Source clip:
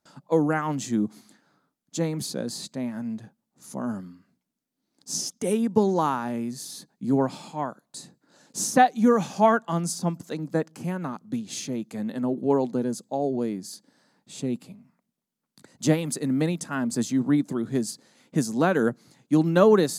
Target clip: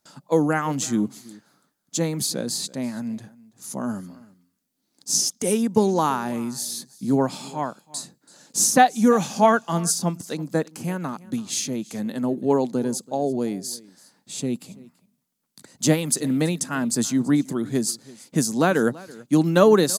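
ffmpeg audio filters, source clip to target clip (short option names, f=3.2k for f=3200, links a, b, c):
-af "highshelf=f=3.7k:g=8.5,aecho=1:1:332:0.0841,volume=2dB"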